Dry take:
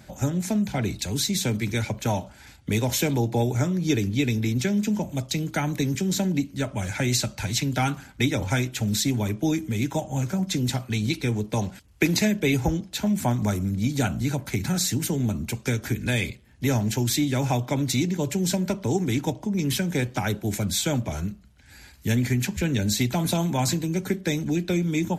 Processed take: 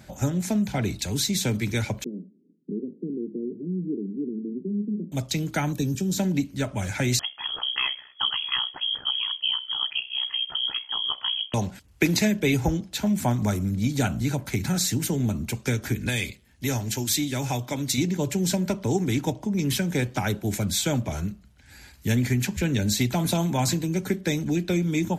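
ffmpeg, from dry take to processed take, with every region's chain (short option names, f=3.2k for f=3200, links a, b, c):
-filter_complex "[0:a]asettb=1/sr,asplit=3[a][b][c];[a]atrim=end=2.044[d];[b]atrim=start=2.04:end=5.12,asetpts=PTS-STARTPTS,afade=t=in:d=0.004:c=qsin,afade=t=out:st=3.076:d=0.004:c=qsin,aeval=exprs='(tanh(12.6*val(0)+0.45)-tanh(0.45))/12.6':c=same,asuperpass=centerf=270:order=12:qfactor=1[e];[c]atrim=start=5.116[f];[d][e]acrossfade=d=0.004:c1=hsin:c2=qsin[g];[g][f]acrossfade=d=0.004:c1=qsin:c2=hsin,asettb=1/sr,asplit=3[h][i][j];[h]atrim=end=5.734[k];[i]atrim=start=5.73:end=6.18,asetpts=PTS-STARTPTS,afade=t=in:d=0.004:c=qsin,afade=t=out:st=0.446:d=0.004:c=qsin,asuperstop=centerf=2100:order=20:qfactor=6.5,equalizer=f=1.6k:w=0.41:g=-7.5[l];[j]atrim=start=6.176[m];[k][l]acrossfade=d=0.004:c1=hsin:c2=qsin[n];[n][m]acrossfade=d=0.004:c1=qsin:c2=hsin,asettb=1/sr,asplit=3[o][p][q];[o]atrim=end=7.194[r];[p]atrim=start=7.19:end=11.54,asetpts=PTS-STARTPTS,afade=t=in:d=0.004:c=qsin,afade=t=out:st=4.346:d=0.004:c=qsin,aeval=exprs='val(0)*sin(2*PI*31*n/s)':c=same,lowpass=f=2.9k:t=q:w=0.5098,lowpass=f=2.9k:t=q:w=0.6013,lowpass=f=2.9k:t=q:w=0.9,lowpass=f=2.9k:t=q:w=2.563,afreqshift=-3400[s];[q]atrim=start=11.536[t];[r][s]acrossfade=d=0.004:c1=hsin:c2=qsin[u];[u][t]acrossfade=d=0.004:c1=qsin:c2=hsin,asettb=1/sr,asplit=3[v][w][x];[v]atrim=end=16.094[y];[w]atrim=start=16.09:end=17.98,asetpts=PTS-STARTPTS,afade=t=in:d=0.004:c=qsin,afade=t=out:st=1.886:d=0.004:c=qsin,highshelf=f=2.5k:g=7.5,flanger=delay=2.3:depth=2.1:regen=-77:speed=1.4:shape=sinusoidal[z];[x]atrim=start=17.976[aa];[y][z]acrossfade=d=0.004:c1=hsin:c2=qsin[ab];[ab][aa]acrossfade=d=0.004:c1=qsin:c2=hsin"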